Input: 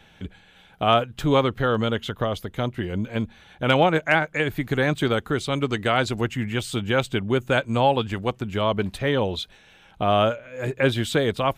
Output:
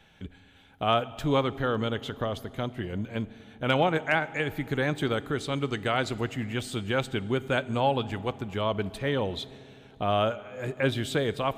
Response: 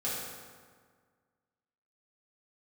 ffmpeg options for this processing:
-filter_complex "[0:a]asplit=2[a][b];[1:a]atrim=start_sample=2205,asetrate=23814,aresample=44100[c];[b][c]afir=irnorm=-1:irlink=0,volume=-25.5dB[d];[a][d]amix=inputs=2:normalize=0,volume=-6dB"

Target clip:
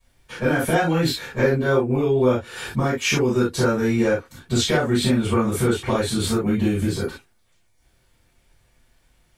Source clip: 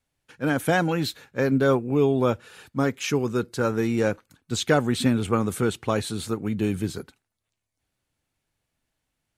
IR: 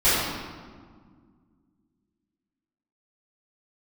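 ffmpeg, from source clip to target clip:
-filter_complex "[0:a]acompressor=threshold=-33dB:ratio=6[a];[1:a]atrim=start_sample=2205,atrim=end_sample=3528[b];[a][b]afir=irnorm=-1:irlink=0"

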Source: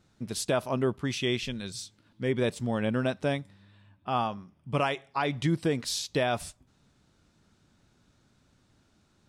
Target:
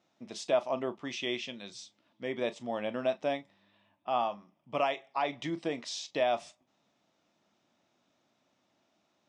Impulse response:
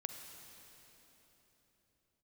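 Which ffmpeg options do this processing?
-filter_complex "[0:a]highpass=330,equalizer=f=420:t=q:w=4:g=-6,equalizer=f=660:t=q:w=4:g=6,equalizer=f=1.5k:t=q:w=4:g=-8,equalizer=f=4.4k:t=q:w=4:g=-7,lowpass=f=6.1k:w=0.5412,lowpass=f=6.1k:w=1.3066[a];[1:a]atrim=start_sample=2205,atrim=end_sample=3528,asetrate=79380,aresample=44100[b];[a][b]afir=irnorm=-1:irlink=0,volume=5.5dB"

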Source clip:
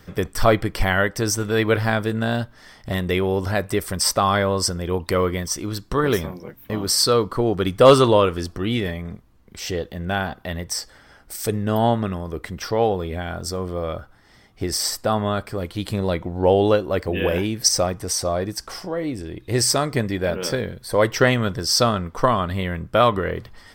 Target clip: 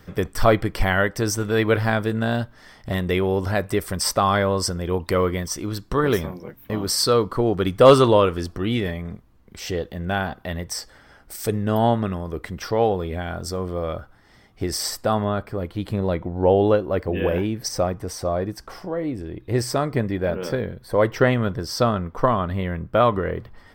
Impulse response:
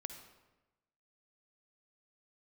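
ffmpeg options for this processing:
-af "asetnsamples=n=441:p=0,asendcmd='15.24 equalizer g -12.5',equalizer=f=7.6k:w=0.36:g=-3.5"

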